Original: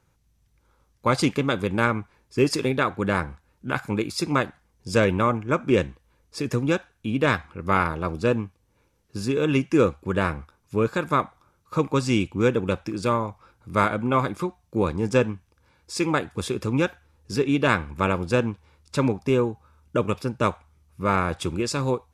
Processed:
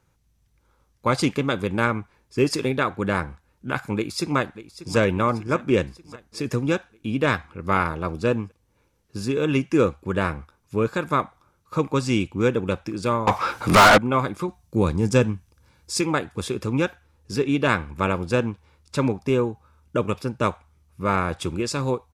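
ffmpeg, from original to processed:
-filter_complex "[0:a]asplit=2[a][b];[b]afade=t=in:st=3.96:d=0.01,afade=t=out:st=4.97:d=0.01,aecho=0:1:590|1180|1770|2360|2950|3540:0.188365|0.113019|0.0678114|0.0406868|0.0244121|0.0146473[c];[a][c]amix=inputs=2:normalize=0,asettb=1/sr,asplit=3[d][e][f];[d]atrim=end=13.274[g];[e]atrim=start=13.27:end=13.98,asetpts=PTS-STARTPTS,afade=t=in:d=0.004:c=qsin,afade=t=out:st=0.706:d=0.004:c=qsin,asplit=2[h][i];[i]highpass=f=720:p=1,volume=38dB,asoftclip=type=tanh:threshold=-5dB[j];[h][j]amix=inputs=2:normalize=0,lowpass=f=5.7k:p=1,volume=-6dB[k];[f]atrim=start=13.976[l];[g][k]acrossfade=d=0.004:c1=hsin:c2=qsin[m];[m][l]acrossfade=d=0.004:c1=qsin:c2=hsin,asettb=1/sr,asplit=3[n][o][p];[n]atrim=end=14.484[q];[o]atrim=start=14.48:end=16.01,asetpts=PTS-STARTPTS,afade=t=in:d=0.004:c=qsin,afade=t=out:st=1.526:d=0.004:c=qsin,bass=f=250:g=6,treble=f=4k:g=7[r];[p]atrim=start=16.006[s];[q][r]acrossfade=d=0.004:c1=hsin:c2=qsin[t];[t][s]acrossfade=d=0.004:c1=qsin:c2=hsin"

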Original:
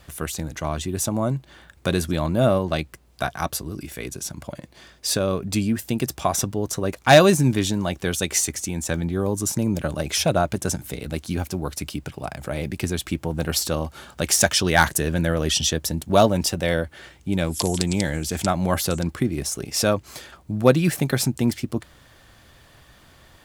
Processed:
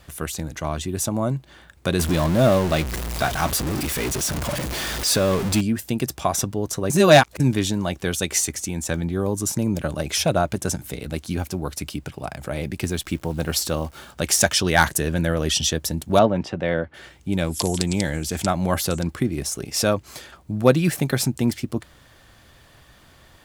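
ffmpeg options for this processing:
-filter_complex "[0:a]asettb=1/sr,asplit=3[a][b][c];[a]atrim=end=1.994[d];[b]atrim=start=1.99:end=5.61,asetpts=PTS-STARTPTS,afade=t=in:d=0.004:c=qsin,afade=t=out:st=3.616:d=0.004:c=qsin,aeval=exprs='val(0)+0.5*0.0794*sgn(val(0))':c=same[e];[c]atrim=start=5.606[f];[d][e]acrossfade=d=0.004:c1=hsin:c2=qsin[g];[g][f]acrossfade=d=0.004:c1=qsin:c2=hsin,asettb=1/sr,asplit=3[h][i][j];[h]atrim=end=12.834[k];[i]atrim=start=12.83:end=14.13,asetpts=PTS-STARTPTS,afade=t=in:d=0.004:c=qsin,afade=t=out:st=1.296:d=0.004:c=qsin,acrusher=bits=9:dc=4:mix=0:aa=0.000001[l];[j]atrim=start=14.126[m];[k][l]acrossfade=d=0.004:c1=hsin:c2=qsin[n];[n][m]acrossfade=d=0.004:c1=qsin:c2=hsin,asettb=1/sr,asplit=3[o][p][q];[o]atrim=end=16.194[r];[p]atrim=start=16.19:end=16.94,asetpts=PTS-STARTPTS,afade=t=in:d=0.004:c=qsin,afade=t=out:st=0.746:d=0.004:c=qsin,highpass=110,lowpass=2.3k[s];[q]atrim=start=16.936[t];[r][s]acrossfade=d=0.004:c1=hsin:c2=qsin[u];[u][t]acrossfade=d=0.004:c1=qsin:c2=hsin,asplit=3[v][w][x];[v]atrim=end=6.902[y];[w]atrim=start=6.898:end=7.402,asetpts=PTS-STARTPTS,areverse[z];[x]atrim=start=7.398[aa];[y][z]acrossfade=d=0.004:c1=hsin:c2=hsin[ab];[ab][aa]acrossfade=d=0.004:c1=hsin:c2=hsin"

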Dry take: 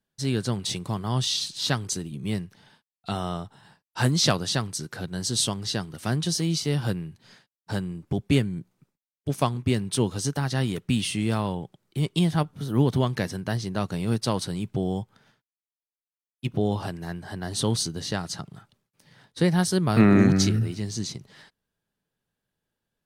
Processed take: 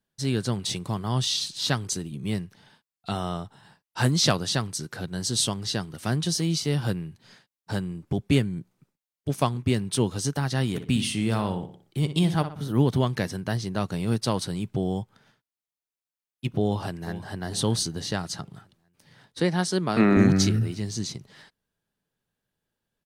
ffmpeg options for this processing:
-filter_complex "[0:a]asplit=3[a][b][c];[a]afade=t=out:st=10.73:d=0.02[d];[b]asplit=2[e][f];[f]adelay=61,lowpass=f=4.1k:p=1,volume=-10dB,asplit=2[g][h];[h]adelay=61,lowpass=f=4.1k:p=1,volume=0.41,asplit=2[i][j];[j]adelay=61,lowpass=f=4.1k:p=1,volume=0.41,asplit=2[k][l];[l]adelay=61,lowpass=f=4.1k:p=1,volume=0.41[m];[e][g][i][k][m]amix=inputs=5:normalize=0,afade=t=in:st=10.73:d=0.02,afade=t=out:st=12.71:d=0.02[n];[c]afade=t=in:st=12.71:d=0.02[o];[d][n][o]amix=inputs=3:normalize=0,asplit=2[p][q];[q]afade=t=in:st=16.62:d=0.01,afade=t=out:st=17.39:d=0.01,aecho=0:1:440|880|1320|1760:0.188365|0.0847642|0.0381439|0.0171648[r];[p][r]amix=inputs=2:normalize=0,asettb=1/sr,asplit=3[s][t][u];[s]atrim=end=19.404[v];[t]atrim=start=19.4:end=20.17,asetpts=PTS-STARTPTS,afade=t=in:d=0.004:c=qsin,afade=t=out:st=0.766:d=0.004:c=qsin,highpass=200,lowpass=8k[w];[u]atrim=start=20.166[x];[v][w]acrossfade=d=0.004:c1=hsin:c2=qsin[y];[y][x]acrossfade=d=0.004:c1=qsin:c2=hsin"

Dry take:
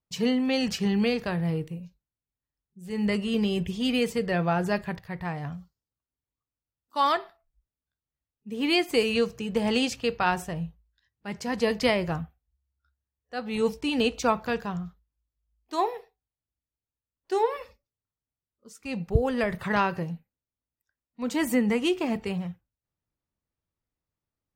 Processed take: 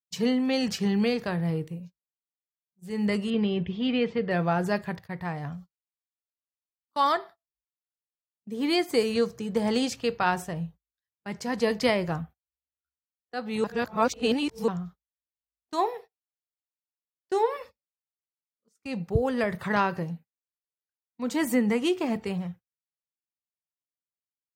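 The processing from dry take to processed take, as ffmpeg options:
-filter_complex "[0:a]asettb=1/sr,asplit=3[a][b][c];[a]atrim=end=3.304[d];[b]atrim=start=3.3:end=4.31,asetpts=PTS-STARTPTS,afade=t=in:d=0.004:c=qsin,afade=t=out:st=1.006:d=0.004:c=qsin,lowpass=f=3.6k:w=0.5412,lowpass=f=3.6k:w=1.3066[e];[c]atrim=start=4.306[f];[d][e]acrossfade=d=0.004:c1=hsin:c2=qsin[g];[g][f]acrossfade=d=0.004:c1=qsin:c2=hsin,asettb=1/sr,asplit=3[h][i][j];[h]atrim=end=7.044[k];[i]atrim=start=7.04:end=9.87,asetpts=PTS-STARTPTS,afade=t=in:d=0.004:c=qsin,afade=t=out:st=2.826:d=0.004:c=qsin,equalizer=f=2.7k:t=o:w=0.3:g=-7.5[l];[j]atrim=start=9.866[m];[k][l]acrossfade=d=0.004:c1=hsin:c2=qsin[n];[n][m]acrossfade=d=0.004:c1=qsin:c2=hsin,asplit=3[o][p][q];[o]atrim=end=13.642[r];[p]atrim=start=13.638:end=14.682,asetpts=PTS-STARTPTS,areverse[s];[q]atrim=start=14.678[t];[r][s]acrossfade=d=0.004:c1=hsin:c2=hsin[u];[u][t]acrossfade=d=0.004:c1=hsin:c2=hsin,highpass=89,agate=range=-23dB:threshold=-44dB:ratio=16:detection=peak,equalizer=f=2.7k:t=o:w=0.43:g=-3.5"

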